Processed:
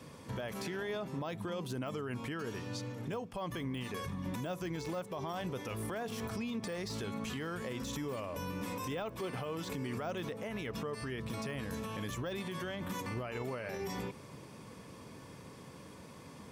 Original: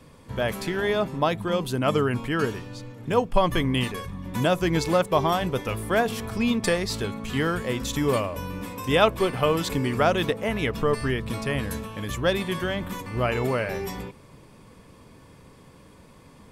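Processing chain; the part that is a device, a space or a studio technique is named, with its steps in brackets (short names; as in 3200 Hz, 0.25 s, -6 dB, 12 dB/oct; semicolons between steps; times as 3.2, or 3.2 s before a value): broadcast voice chain (HPF 95 Hz 12 dB/oct; de-esser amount 80%; compressor 3:1, threshold -34 dBFS, peak gain reduction 14 dB; bell 5800 Hz +4.5 dB 0.37 oct; limiter -30.5 dBFS, peak gain reduction 10 dB)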